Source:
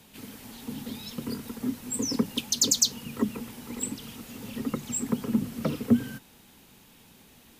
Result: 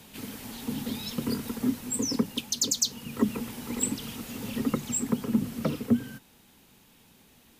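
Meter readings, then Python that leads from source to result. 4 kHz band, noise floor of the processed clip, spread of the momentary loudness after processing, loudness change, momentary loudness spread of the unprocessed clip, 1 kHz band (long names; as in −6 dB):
−2.5 dB, −59 dBFS, 10 LU, −1.0 dB, 18 LU, +1.5 dB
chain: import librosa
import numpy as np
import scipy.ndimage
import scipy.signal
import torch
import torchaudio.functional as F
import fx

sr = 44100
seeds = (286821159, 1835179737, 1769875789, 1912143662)

y = fx.rider(x, sr, range_db=4, speed_s=0.5)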